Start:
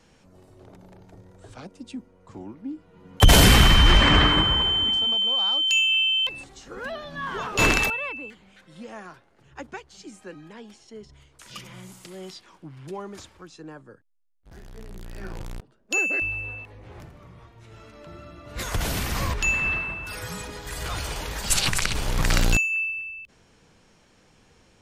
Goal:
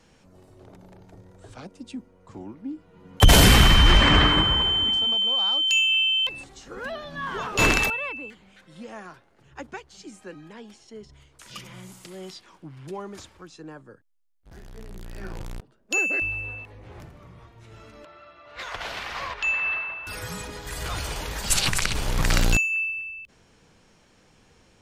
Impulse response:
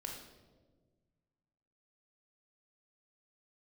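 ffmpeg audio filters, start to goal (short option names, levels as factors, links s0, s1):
-filter_complex "[0:a]asettb=1/sr,asplit=3[s0][s1][s2];[s0]atrim=end=18.054[s3];[s1]atrim=start=18.05:end=20.07,asetpts=PTS-STARTPTS,afade=t=in:d=0.004:c=qsin,afade=t=out:st=2.016:d=0.004:c=qsin,acrossover=split=530 4600:gain=0.1 1 0.0631[s4][s5][s6];[s4][s5][s6]amix=inputs=3:normalize=0[s7];[s2]atrim=start=20.066[s8];[s3][s7]acrossfade=d=0.004:c1=hsin:c2=qsin[s9];[s9][s8]acrossfade=d=0.004:c1=qsin:c2=hsin"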